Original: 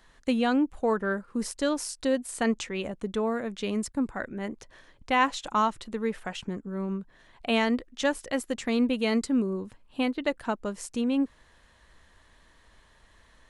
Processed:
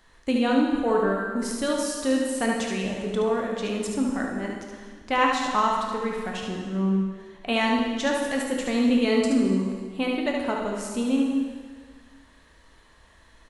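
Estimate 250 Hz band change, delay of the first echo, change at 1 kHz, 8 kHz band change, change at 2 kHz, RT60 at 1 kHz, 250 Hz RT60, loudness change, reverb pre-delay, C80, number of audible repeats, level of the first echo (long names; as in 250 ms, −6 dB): +4.0 dB, 73 ms, +3.5 dB, +3.5 dB, +3.0 dB, 1.7 s, 1.6 s, +4.0 dB, 6 ms, 4.0 dB, 1, −5.0 dB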